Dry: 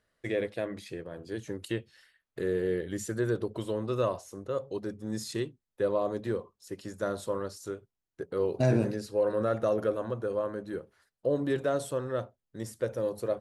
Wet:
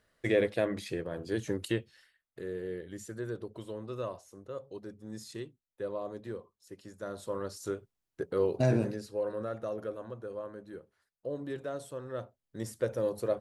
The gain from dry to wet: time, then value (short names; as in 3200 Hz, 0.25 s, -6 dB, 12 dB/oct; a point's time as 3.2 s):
1.57 s +4 dB
2.41 s -8.5 dB
7.04 s -8.5 dB
7.66 s +2 dB
8.26 s +2 dB
9.56 s -9 dB
11.95 s -9 dB
12.58 s 0 dB